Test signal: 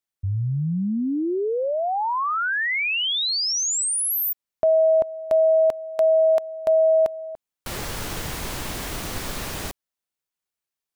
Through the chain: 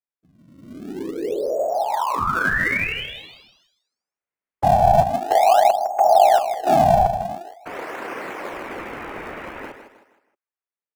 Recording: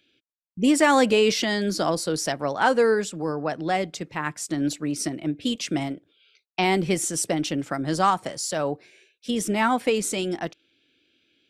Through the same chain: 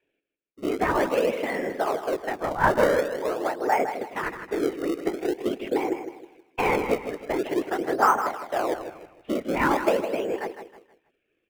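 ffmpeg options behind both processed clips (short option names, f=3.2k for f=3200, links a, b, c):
-filter_complex "[0:a]dynaudnorm=f=370:g=9:m=9dB,highpass=f=230:t=q:w=0.5412,highpass=f=230:t=q:w=1.307,lowpass=f=2.4k:t=q:w=0.5176,lowpass=f=2.4k:t=q:w=0.7071,lowpass=f=2.4k:t=q:w=1.932,afreqshift=84,afftfilt=real='hypot(re,im)*cos(2*PI*random(0))':imag='hypot(re,im)*sin(2*PI*random(1))':win_size=512:overlap=0.75,aecho=1:1:158|316|474|632:0.355|0.128|0.046|0.0166,asplit=2[a][b];[b]acrusher=samples=30:mix=1:aa=0.000001:lfo=1:lforange=48:lforate=0.46,volume=-9dB[c];[a][c]amix=inputs=2:normalize=0,volume=-1dB"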